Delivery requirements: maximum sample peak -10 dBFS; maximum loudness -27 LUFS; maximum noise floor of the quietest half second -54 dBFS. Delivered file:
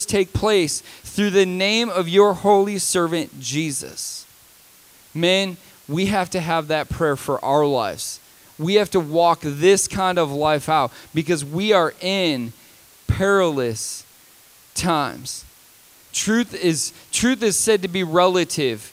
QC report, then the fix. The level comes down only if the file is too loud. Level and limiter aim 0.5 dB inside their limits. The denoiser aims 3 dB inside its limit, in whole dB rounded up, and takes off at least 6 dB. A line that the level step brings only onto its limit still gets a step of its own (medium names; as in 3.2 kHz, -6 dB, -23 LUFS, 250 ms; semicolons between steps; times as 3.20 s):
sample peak -3.0 dBFS: fail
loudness -20.0 LUFS: fail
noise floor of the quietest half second -50 dBFS: fail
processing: trim -7.5 dB